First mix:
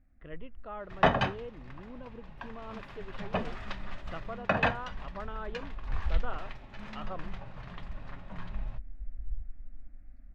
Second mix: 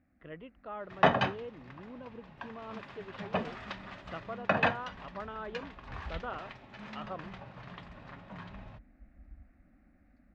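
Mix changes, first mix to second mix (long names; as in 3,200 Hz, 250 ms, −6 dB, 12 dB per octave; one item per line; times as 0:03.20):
first sound +3.5 dB
master: add band-pass filter 120–7,100 Hz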